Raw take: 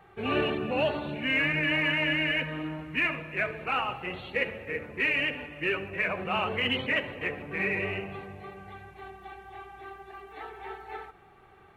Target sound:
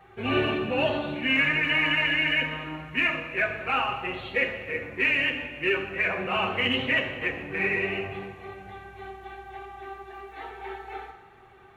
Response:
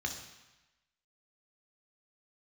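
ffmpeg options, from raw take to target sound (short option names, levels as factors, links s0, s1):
-filter_complex "[0:a]asplit=2[s0][s1];[1:a]atrim=start_sample=2205,lowshelf=f=340:g=-6,adelay=7[s2];[s1][s2]afir=irnorm=-1:irlink=0,volume=0.794[s3];[s0][s3]amix=inputs=2:normalize=0"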